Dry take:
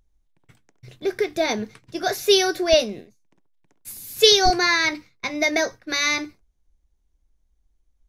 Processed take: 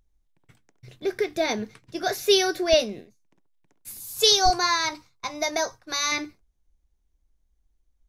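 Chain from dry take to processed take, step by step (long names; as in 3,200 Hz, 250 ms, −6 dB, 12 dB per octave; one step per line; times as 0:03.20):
0:04.00–0:06.12: octave-band graphic EQ 250/500/1,000/2,000/8,000 Hz −8/−4/+8/−9/+5 dB
level −2.5 dB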